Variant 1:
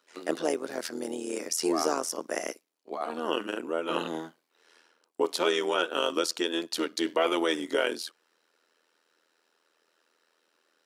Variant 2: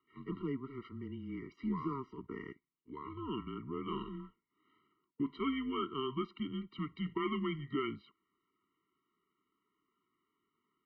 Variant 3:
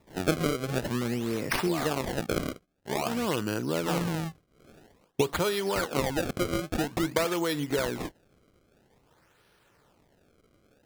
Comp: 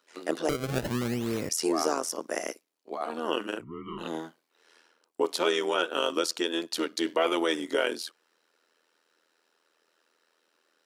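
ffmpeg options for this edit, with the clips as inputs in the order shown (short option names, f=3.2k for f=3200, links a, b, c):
-filter_complex "[0:a]asplit=3[a][b][c];[a]atrim=end=0.492[d];[2:a]atrim=start=0.488:end=1.492[e];[b]atrim=start=1.488:end=3.65[f];[1:a]atrim=start=3.55:end=4.07[g];[c]atrim=start=3.97[h];[d][e]acrossfade=d=0.004:c1=hsin:c2=hsin[i];[i][f]acrossfade=d=0.004:c1=hsin:c2=hsin[j];[j][g]acrossfade=d=0.1:c1=tri:c2=tri[k];[k][h]acrossfade=d=0.1:c1=tri:c2=tri"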